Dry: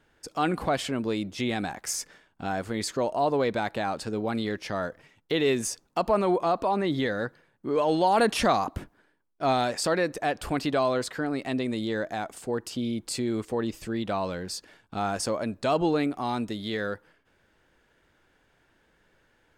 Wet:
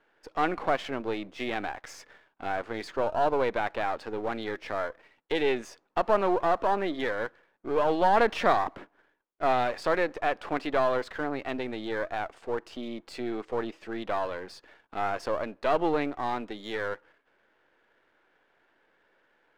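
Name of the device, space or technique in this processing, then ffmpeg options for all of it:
crystal radio: -af "highpass=370,lowpass=2500,aeval=exprs='if(lt(val(0),0),0.447*val(0),val(0))':channel_layout=same,volume=3dB"

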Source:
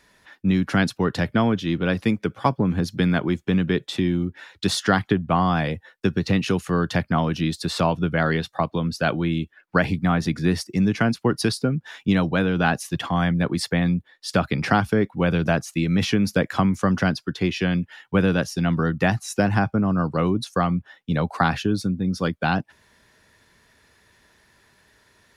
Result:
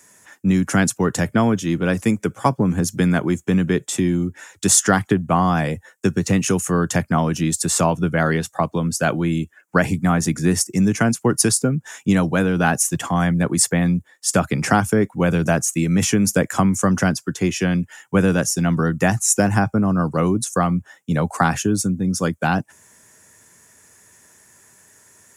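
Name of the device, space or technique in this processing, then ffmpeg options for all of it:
budget condenser microphone: -af "highpass=frequency=80:width=0.5412,highpass=frequency=80:width=1.3066,highshelf=frequency=5500:width_type=q:width=3:gain=10.5,volume=3dB"

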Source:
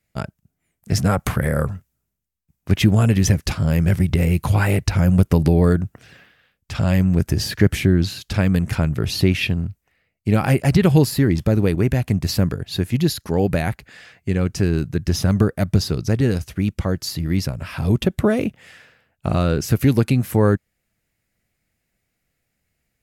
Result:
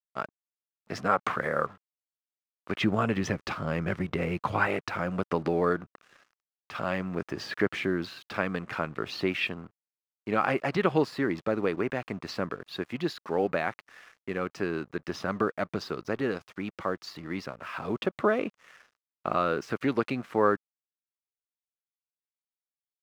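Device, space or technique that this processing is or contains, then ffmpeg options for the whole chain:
pocket radio on a weak battery: -filter_complex "[0:a]highpass=350,lowpass=3100,aeval=exprs='sgn(val(0))*max(abs(val(0))-0.00316,0)':channel_layout=same,equalizer=frequency=1200:width_type=o:width=0.56:gain=8,asettb=1/sr,asplit=3[link_01][link_02][link_03];[link_01]atrim=end=2.814[link_04];[link_02]atrim=start=2.81:end=4.67,asetpts=PTS-STARTPTS,afade=type=in:duration=0.004:curve=qsin,afade=type=out:start_time=1.856:duration=0.004:curve=qsin,lowshelf=frequency=190:gain=8.5[link_05];[link_03]atrim=start=4.666[link_06];[link_04][link_05]acrossfade=duration=0.004:curve1=hsin:curve2=qsin[link_07];[link_07][link_06]acrossfade=duration=0.004:curve1=qsin:curve2=hsin,volume=-4.5dB"

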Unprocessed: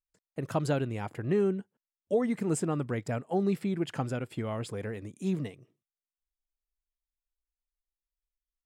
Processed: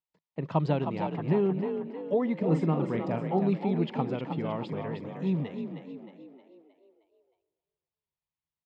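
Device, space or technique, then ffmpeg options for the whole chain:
frequency-shifting delay pedal into a guitar cabinet: -filter_complex "[0:a]asplit=7[link_01][link_02][link_03][link_04][link_05][link_06][link_07];[link_02]adelay=312,afreqshift=41,volume=-7dB[link_08];[link_03]adelay=624,afreqshift=82,volume=-13.6dB[link_09];[link_04]adelay=936,afreqshift=123,volume=-20.1dB[link_10];[link_05]adelay=1248,afreqshift=164,volume=-26.7dB[link_11];[link_06]adelay=1560,afreqshift=205,volume=-33.2dB[link_12];[link_07]adelay=1872,afreqshift=246,volume=-39.8dB[link_13];[link_01][link_08][link_09][link_10][link_11][link_12][link_13]amix=inputs=7:normalize=0,highpass=110,equalizer=frequency=110:width_type=q:width=4:gain=-5,equalizer=frequency=160:width_type=q:width=4:gain=8,equalizer=frequency=930:width_type=q:width=4:gain=8,equalizer=frequency=1500:width_type=q:width=4:gain=-8,lowpass=frequency=4000:width=0.5412,lowpass=frequency=4000:width=1.3066,asettb=1/sr,asplit=3[link_14][link_15][link_16];[link_14]atrim=end=2.394[link_17];[link_15]atrim=start=2.39:end=3.41,asetpts=PTS-STARTPTS,afade=type=in:duration=0.004:curve=qsin,afade=type=out:start_time=1.016:duration=0.004:curve=qsin,asplit=2[link_18][link_19];[link_19]adelay=43,volume=-8dB[link_20];[link_18][link_20]amix=inputs=2:normalize=0,atrim=end_sample=44982[link_21];[link_16]atrim=start=3.406[link_22];[link_17][link_21]acrossfade=duration=0.004:curve1=hsin:curve2=qsin[link_23];[link_23][link_22]acrossfade=duration=0.004:curve1=qsin:curve2=hsin,asplit=2[link_24][link_25];[link_25]adelay=274,lowpass=frequency=1900:poles=1,volume=-19dB,asplit=2[link_26][link_27];[link_27]adelay=274,lowpass=frequency=1900:poles=1,volume=0.42,asplit=2[link_28][link_29];[link_29]adelay=274,lowpass=frequency=1900:poles=1,volume=0.42[link_30];[link_24][link_26][link_28][link_30]amix=inputs=4:normalize=0"

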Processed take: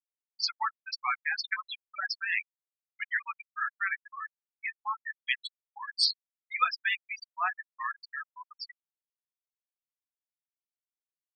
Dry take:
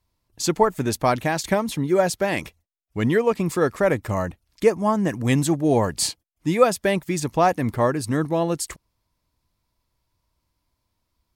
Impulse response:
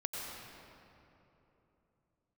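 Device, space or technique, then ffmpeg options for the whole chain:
headphones lying on a table: -filter_complex "[0:a]highshelf=frequency=5100:width_type=q:width=1.5:gain=-6.5,asplit=2[link_01][link_02];[link_02]adelay=24,volume=-10.5dB[link_03];[link_01][link_03]amix=inputs=2:normalize=0,asettb=1/sr,asplit=3[link_04][link_05][link_06];[link_04]atrim=end=7.574[link_07];[link_05]atrim=start=7.57:end=8.17,asetpts=PTS-STARTPTS,afade=type=in:duration=0.004:curve=qsin,afade=type=out:start_time=0.596:duration=0.004:curve=qsin,adynamicequalizer=threshold=0.00316:dfrequency=3300:dqfactor=2.1:tfrequency=3300:tqfactor=2.1:attack=5:release=100:ratio=0.375:range=2.5:mode=cutabove:tftype=bell[link_08];[link_06]atrim=start=8.166[link_09];[link_07][link_08]acrossfade=duration=0.004:curve1=hsin:curve2=qsin[link_10];[link_10][link_09]acrossfade=duration=0.004:curve1=qsin:curve2=hsin,highpass=frequency=1300:width=0.5412,highpass=frequency=1300:width=1.3066,equalizer=frequency=5300:width_type=o:width=0.43:gain=6.5,afftfilt=real='re*gte(hypot(re,im),0.1)':imag='im*gte(hypot(re,im),0.1)':win_size=1024:overlap=0.75"

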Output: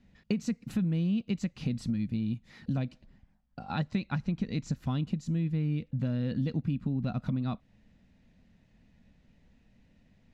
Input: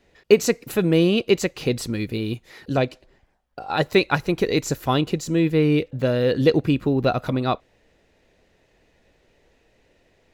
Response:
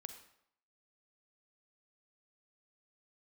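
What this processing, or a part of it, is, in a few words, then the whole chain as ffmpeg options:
jukebox: -filter_complex "[0:a]lowpass=7300,lowshelf=frequency=290:width_type=q:width=3:gain=10,acompressor=threshold=-20dB:ratio=4,asettb=1/sr,asplit=3[link_01][link_02][link_03];[link_01]atrim=end=3.634[link_04];[link_02]atrim=start=3.63:end=4.76,asetpts=PTS-STARTPTS,afade=type=in:duration=0.004:curve=qsin,afade=type=out:start_time=1.126:duration=0.004:curve=qsin,lowpass=7600[link_05];[link_03]atrim=start=4.756[link_06];[link_04][link_05]acrossfade=duration=0.004:curve1=hsin:curve2=qsin[link_07];[link_07][link_06]acrossfade=duration=0.004:curve1=qsin:curve2=hsin,volume=-9dB"

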